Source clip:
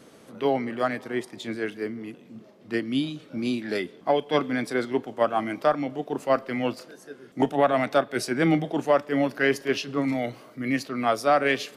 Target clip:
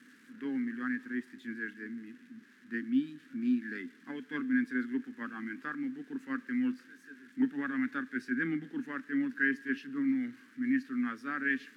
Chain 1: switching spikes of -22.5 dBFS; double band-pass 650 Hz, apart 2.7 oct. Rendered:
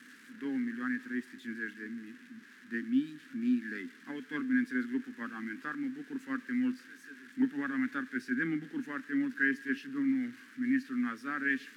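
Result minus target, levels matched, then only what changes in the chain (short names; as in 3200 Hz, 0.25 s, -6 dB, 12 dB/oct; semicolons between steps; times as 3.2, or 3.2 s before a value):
switching spikes: distortion +6 dB
change: switching spikes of -29 dBFS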